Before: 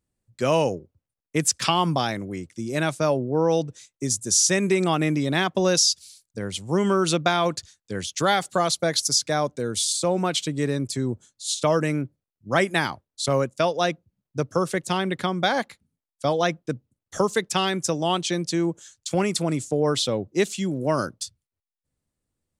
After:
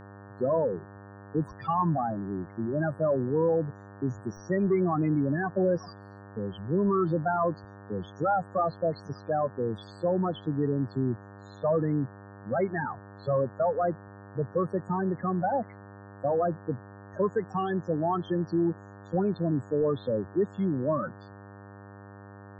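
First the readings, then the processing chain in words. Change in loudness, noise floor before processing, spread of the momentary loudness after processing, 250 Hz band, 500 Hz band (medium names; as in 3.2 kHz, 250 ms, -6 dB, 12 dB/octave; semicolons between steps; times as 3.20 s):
-5.5 dB, under -85 dBFS, 16 LU, -3.0 dB, -3.5 dB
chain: tracing distortion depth 0.13 ms; high-pass 57 Hz 12 dB/octave; dynamic bell 1.1 kHz, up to +3 dB, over -32 dBFS, Q 1.5; saturation -18.5 dBFS, distortion -11 dB; loudest bins only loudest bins 8; Savitzky-Golay filter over 41 samples; mains buzz 100 Hz, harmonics 18, -47 dBFS -4 dB/octave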